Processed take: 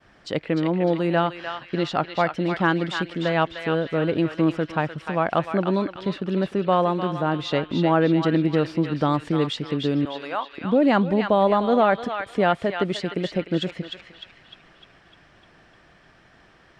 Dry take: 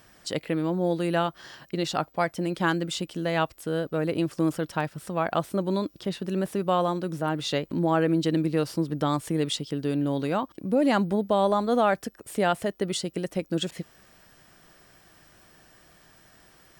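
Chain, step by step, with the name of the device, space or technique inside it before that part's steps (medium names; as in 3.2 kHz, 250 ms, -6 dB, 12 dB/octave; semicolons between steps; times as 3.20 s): 10.05–10.53 s: high-pass 790 Hz 12 dB/octave; hearing-loss simulation (low-pass 3.2 kHz 12 dB/octave; expander -56 dBFS); band-passed feedback delay 302 ms, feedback 56%, band-pass 2.7 kHz, level -3.5 dB; trim +4 dB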